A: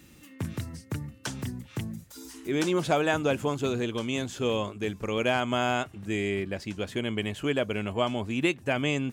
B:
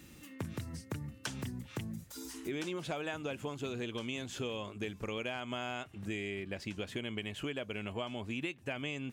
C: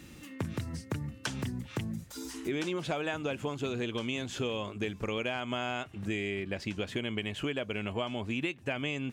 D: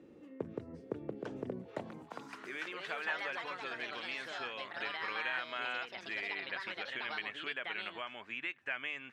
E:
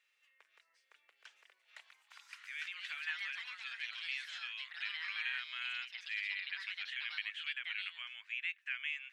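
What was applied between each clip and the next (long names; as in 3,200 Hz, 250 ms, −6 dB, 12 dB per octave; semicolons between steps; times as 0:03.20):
dynamic equaliser 2,700 Hz, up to +5 dB, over −46 dBFS, Q 1.3; downward compressor 6 to 1, threshold −35 dBFS, peak gain reduction 15.5 dB; level −1 dB
high-shelf EQ 9,700 Hz −8 dB; level +5 dB
delay with pitch and tempo change per echo 770 ms, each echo +4 semitones, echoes 2; band-pass filter sweep 450 Hz → 1,700 Hz, 0:01.48–0:02.60; mains-hum notches 50/100/150 Hz; level +3.5 dB
four-pole ladder high-pass 1,700 Hz, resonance 25%; level +5.5 dB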